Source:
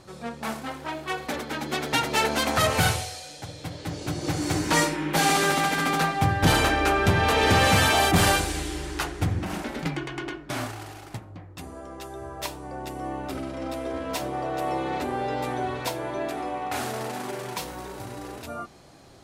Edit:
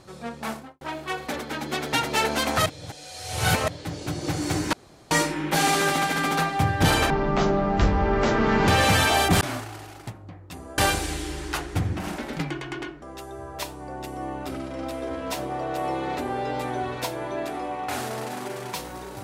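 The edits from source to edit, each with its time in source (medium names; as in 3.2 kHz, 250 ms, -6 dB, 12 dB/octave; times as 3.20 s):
0.48–0.81 s: studio fade out
2.66–3.68 s: reverse
4.73 s: insert room tone 0.38 s
6.72–7.51 s: speed 50%
10.48–11.85 s: move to 8.24 s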